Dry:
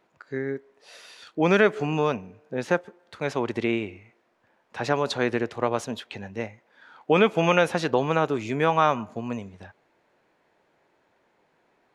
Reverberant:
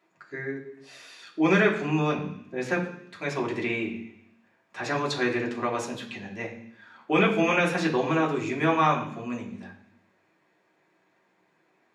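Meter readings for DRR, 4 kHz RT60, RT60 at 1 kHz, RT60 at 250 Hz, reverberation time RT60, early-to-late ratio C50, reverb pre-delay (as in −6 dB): −4.0 dB, 0.85 s, 0.65 s, 0.95 s, 0.65 s, 9.0 dB, 3 ms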